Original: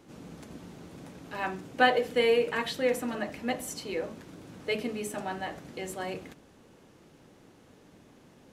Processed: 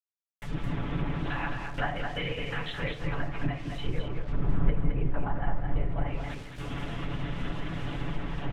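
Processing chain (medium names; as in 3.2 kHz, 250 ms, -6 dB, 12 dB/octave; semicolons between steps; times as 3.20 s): recorder AGC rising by 37 dB/s; gate with hold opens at -22 dBFS; LPC vocoder at 8 kHz whisper; peaking EQ 460 Hz -8.5 dB 1.2 oct; comb 7 ms, depth 59%; simulated room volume 1000 m³, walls furnished, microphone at 0.72 m; bit crusher 7-bit; 3.77–6.04 s: bass shelf 87 Hz +10.5 dB; low-pass that closes with the level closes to 1.2 kHz, closed at -15 dBFS; delay 215 ms -5.5 dB; trim -7.5 dB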